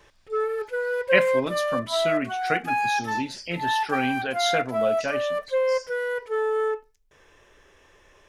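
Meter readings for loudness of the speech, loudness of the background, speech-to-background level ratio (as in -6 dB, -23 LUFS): -28.5 LUFS, -26.5 LUFS, -2.0 dB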